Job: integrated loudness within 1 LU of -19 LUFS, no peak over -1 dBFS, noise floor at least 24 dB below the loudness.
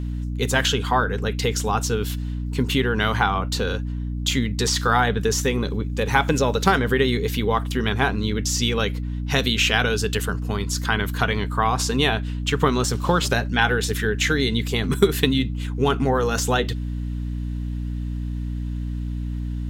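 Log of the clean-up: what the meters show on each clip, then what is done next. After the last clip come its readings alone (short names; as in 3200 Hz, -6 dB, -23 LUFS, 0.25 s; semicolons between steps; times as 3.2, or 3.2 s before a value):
hum 60 Hz; harmonics up to 300 Hz; hum level -24 dBFS; loudness -22.5 LUFS; peak -2.5 dBFS; loudness target -19.0 LUFS
-> de-hum 60 Hz, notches 5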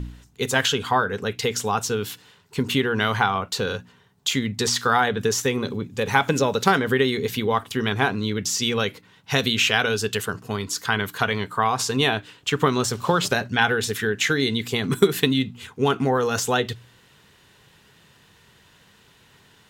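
hum none; loudness -22.5 LUFS; peak -2.5 dBFS; loudness target -19.0 LUFS
-> gain +3.5 dB; limiter -1 dBFS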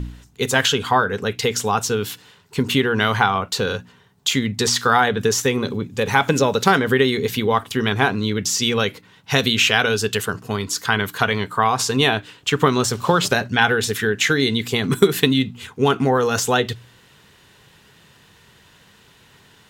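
loudness -19.5 LUFS; peak -1.0 dBFS; noise floor -53 dBFS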